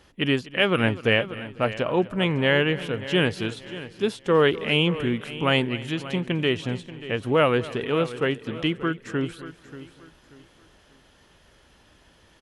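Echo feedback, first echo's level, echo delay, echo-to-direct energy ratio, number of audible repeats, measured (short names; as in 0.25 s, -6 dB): no steady repeat, -18.5 dB, 0.248 s, -13.0 dB, 5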